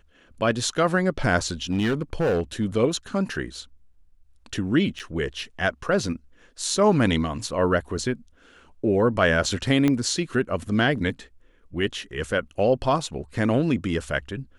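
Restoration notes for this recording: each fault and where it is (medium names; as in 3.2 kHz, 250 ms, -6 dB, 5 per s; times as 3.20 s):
1.70–2.65 s: clipped -18.5 dBFS
4.99–5.00 s: dropout 7.2 ms
9.88 s: pop -10 dBFS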